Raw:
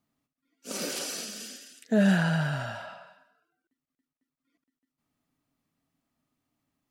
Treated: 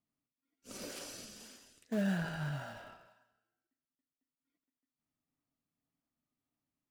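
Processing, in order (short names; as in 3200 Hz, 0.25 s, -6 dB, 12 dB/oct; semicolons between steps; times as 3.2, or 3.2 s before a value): 2.23–2.96 doubler 21 ms -4 dB; in parallel at -9 dB: decimation with a swept rate 29×, swing 160% 1.8 Hz; on the sum: resonator 58 Hz, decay 1.2 s, harmonics all, mix 50%; gain -8 dB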